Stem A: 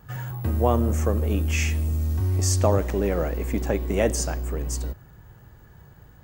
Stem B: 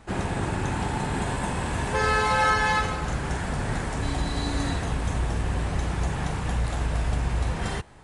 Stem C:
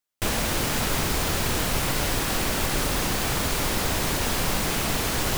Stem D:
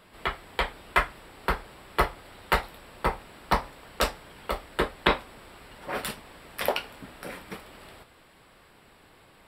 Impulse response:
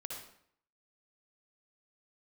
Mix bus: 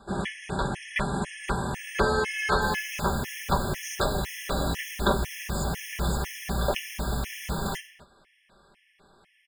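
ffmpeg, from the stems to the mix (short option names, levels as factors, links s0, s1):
-filter_complex "[0:a]acompressor=threshold=0.0631:ratio=6,adelay=1400,volume=0.531[s0];[1:a]highpass=51,volume=0.596,asplit=2[s1][s2];[s2]volume=0.531[s3];[2:a]adelay=2400,volume=0.2,asplit=2[s4][s5];[s5]volume=0.708[s6];[3:a]lowpass=8100,volume=0.708[s7];[4:a]atrim=start_sample=2205[s8];[s3][s6]amix=inputs=2:normalize=0[s9];[s9][s8]afir=irnorm=-1:irlink=0[s10];[s0][s1][s4][s7][s10]amix=inputs=5:normalize=0,aecho=1:1:5.1:0.6,afftfilt=real='re*gt(sin(2*PI*2*pts/sr)*(1-2*mod(floor(b*sr/1024/1700),2)),0)':imag='im*gt(sin(2*PI*2*pts/sr)*(1-2*mod(floor(b*sr/1024/1700),2)),0)':win_size=1024:overlap=0.75"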